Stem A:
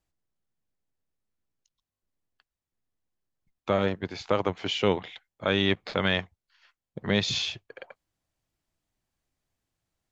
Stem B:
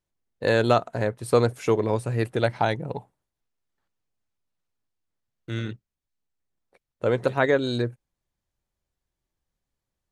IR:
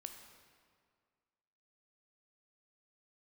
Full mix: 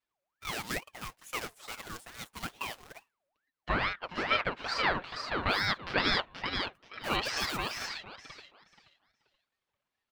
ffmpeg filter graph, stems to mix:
-filter_complex "[0:a]aeval=exprs='if(lt(val(0),0),0.447*val(0),val(0))':c=same,acrossover=split=170 3600:gain=0.224 1 0.178[a][b][c];[a][b][c]amix=inputs=3:normalize=0,volume=2.5dB,asplit=2[d][e];[e]volume=-4.5dB[f];[1:a]acrusher=bits=2:mode=log:mix=0:aa=0.000001,highpass=f=510:p=1,volume=-11.5dB[g];[f]aecho=0:1:479|958|1437|1916:1|0.22|0.0484|0.0106[h];[d][g][h]amix=inputs=3:normalize=0,equalizer=f=260:w=0.82:g=-9,aecho=1:1:5.7:0.88,aeval=exprs='val(0)*sin(2*PI*1200*n/s+1200*0.55/2.3*sin(2*PI*2.3*n/s))':c=same"

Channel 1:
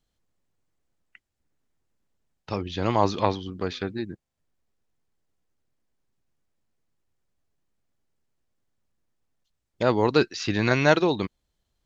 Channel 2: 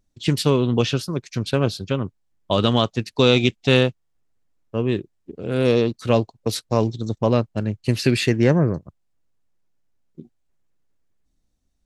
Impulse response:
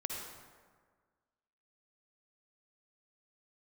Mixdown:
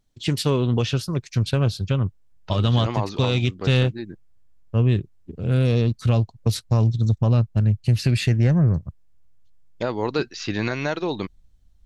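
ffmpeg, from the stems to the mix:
-filter_complex "[0:a]volume=-0.5dB[a];[1:a]asubboost=boost=8:cutoff=130,asoftclip=type=tanh:threshold=-3.5dB,volume=-0.5dB[b];[a][b]amix=inputs=2:normalize=0,alimiter=limit=-11.5dB:level=0:latency=1:release=270"

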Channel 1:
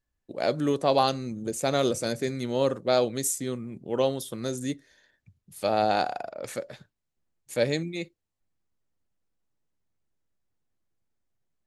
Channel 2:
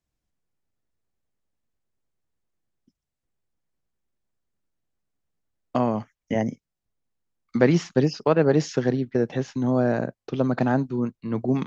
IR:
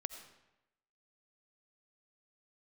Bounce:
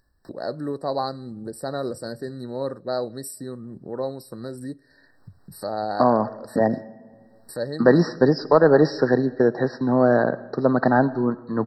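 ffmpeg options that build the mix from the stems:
-filter_complex "[0:a]agate=range=-33dB:threshold=-58dB:ratio=3:detection=peak,highshelf=f=8.1k:g=-4.5,volume=-4dB,asplit=2[a][b];[b]volume=-21dB[c];[1:a]asplit=2[d][e];[e]highpass=f=720:p=1,volume=13dB,asoftclip=type=tanh:threshold=-4.5dB[f];[d][f]amix=inputs=2:normalize=0,lowpass=f=1.9k:p=1,volume=-6dB,adelay=250,volume=-1dB,asplit=2[g][h];[h]volume=-3dB[i];[2:a]atrim=start_sample=2205[j];[c][i]amix=inputs=2:normalize=0[k];[k][j]afir=irnorm=-1:irlink=0[l];[a][g][l]amix=inputs=3:normalize=0,acompressor=mode=upward:threshold=-29dB:ratio=2.5,afftfilt=real='re*eq(mod(floor(b*sr/1024/1900),2),0)':imag='im*eq(mod(floor(b*sr/1024/1900),2),0)':win_size=1024:overlap=0.75"

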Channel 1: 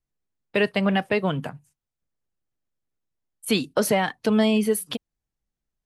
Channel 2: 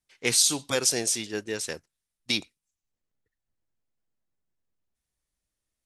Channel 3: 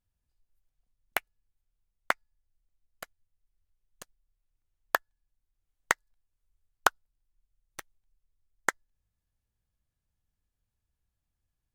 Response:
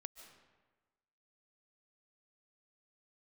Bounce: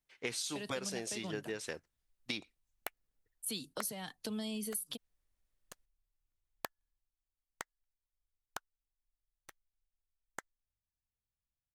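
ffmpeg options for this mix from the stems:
-filter_complex "[0:a]acrossover=split=250|3000[a][b][c];[b]acompressor=threshold=-27dB:ratio=3[d];[a][d][c]amix=inputs=3:normalize=0,aexciter=amount=2.9:drive=5.9:freq=3.4k,volume=-14.5dB[e];[1:a]bass=f=250:g=-3,treble=f=4k:g=-9,volume=-2dB[f];[2:a]acompressor=threshold=-29dB:ratio=2,adelay=1700,volume=-6dB,afade=t=out:st=6.88:d=0.3:silence=0.421697[g];[e][f][g]amix=inputs=3:normalize=0,acompressor=threshold=-36dB:ratio=5"

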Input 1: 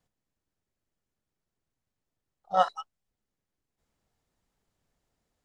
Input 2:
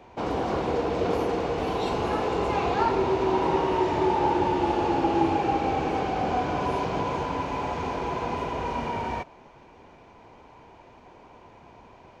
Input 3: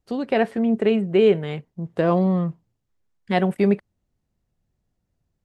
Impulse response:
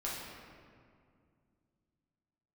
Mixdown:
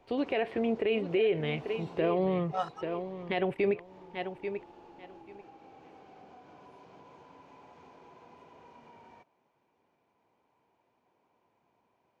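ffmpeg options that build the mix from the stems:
-filter_complex "[0:a]volume=-8.5dB[a];[1:a]highpass=130,acompressor=threshold=-28dB:ratio=4,volume=-13dB,afade=t=out:st=1.6:d=0.62:silence=0.316228[b];[2:a]firequalizer=gain_entry='entry(120,0);entry(200,-16);entry(300,-2);entry(1500,-7);entry(2400,4);entry(6300,-19)':delay=0.05:min_phase=1,volume=0.5dB,asplit=3[c][d][e];[d]volume=-12.5dB[f];[e]apad=whole_len=538060[g];[b][g]sidechaincompress=threshold=-32dB:ratio=3:attack=6.7:release=259[h];[f]aecho=0:1:838|1676|2514:1|0.17|0.0289[i];[a][h][c][i]amix=inputs=4:normalize=0,alimiter=limit=-19.5dB:level=0:latency=1:release=60"

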